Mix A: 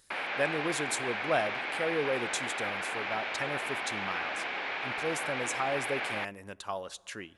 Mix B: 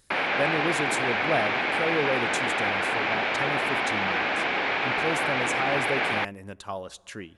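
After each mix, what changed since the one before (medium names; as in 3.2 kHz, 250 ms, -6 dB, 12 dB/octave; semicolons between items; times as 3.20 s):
background +8.0 dB; master: add bass shelf 390 Hz +8.5 dB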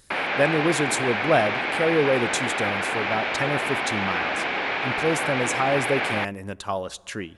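speech +6.5 dB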